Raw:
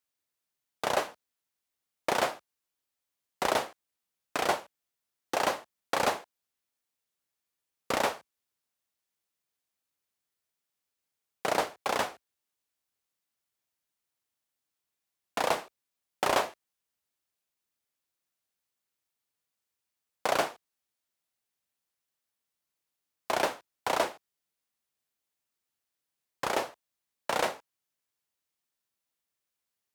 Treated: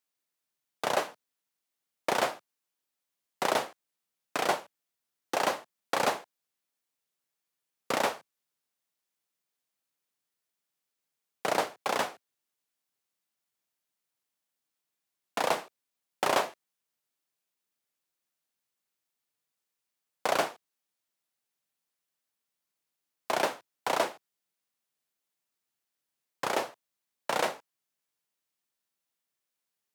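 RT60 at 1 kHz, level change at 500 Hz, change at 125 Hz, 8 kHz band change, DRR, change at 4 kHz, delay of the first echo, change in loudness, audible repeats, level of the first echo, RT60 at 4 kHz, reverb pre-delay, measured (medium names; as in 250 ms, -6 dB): no reverb, 0.0 dB, -1.0 dB, 0.0 dB, no reverb, 0.0 dB, no echo, 0.0 dB, no echo, no echo, no reverb, no reverb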